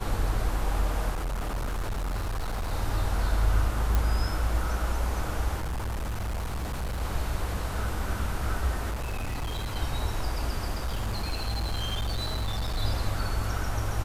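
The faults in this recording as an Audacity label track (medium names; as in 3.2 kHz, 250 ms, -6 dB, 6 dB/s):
1.110000	2.730000	clipped -27 dBFS
3.950000	3.950000	pop
5.580000	7.020000	clipped -28 dBFS
8.900000	9.770000	clipped -28 dBFS
10.720000	12.780000	clipped -25.5 dBFS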